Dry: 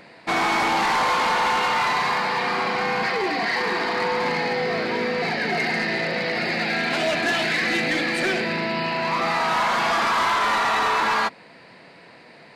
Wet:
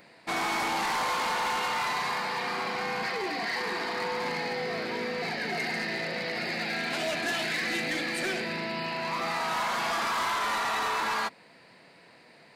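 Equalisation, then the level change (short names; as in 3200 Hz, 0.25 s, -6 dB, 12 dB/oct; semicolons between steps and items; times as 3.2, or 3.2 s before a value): high shelf 7500 Hz +12 dB; -8.5 dB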